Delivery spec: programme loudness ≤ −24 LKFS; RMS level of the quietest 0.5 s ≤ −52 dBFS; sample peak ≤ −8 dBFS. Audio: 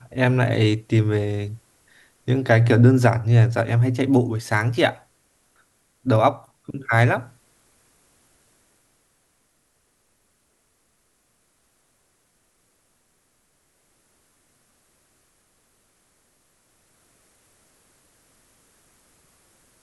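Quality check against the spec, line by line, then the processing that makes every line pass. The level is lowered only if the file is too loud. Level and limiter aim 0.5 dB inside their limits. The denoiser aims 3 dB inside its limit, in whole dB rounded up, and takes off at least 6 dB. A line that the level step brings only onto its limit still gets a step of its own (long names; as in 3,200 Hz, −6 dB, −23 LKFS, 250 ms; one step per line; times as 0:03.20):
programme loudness −20.0 LKFS: out of spec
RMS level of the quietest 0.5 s −67 dBFS: in spec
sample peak −2.0 dBFS: out of spec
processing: level −4.5 dB
brickwall limiter −8.5 dBFS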